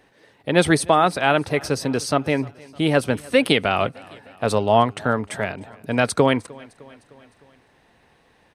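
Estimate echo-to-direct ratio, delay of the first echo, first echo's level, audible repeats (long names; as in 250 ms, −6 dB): −22.0 dB, 305 ms, −23.5 dB, 3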